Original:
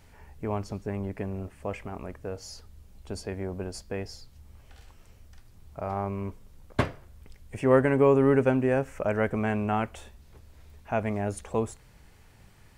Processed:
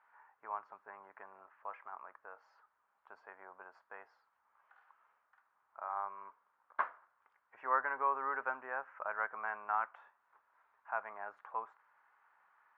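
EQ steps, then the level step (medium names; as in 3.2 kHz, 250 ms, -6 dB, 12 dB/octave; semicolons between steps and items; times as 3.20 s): Butterworth band-pass 1.2 kHz, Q 1.8; distance through air 59 m; 0.0 dB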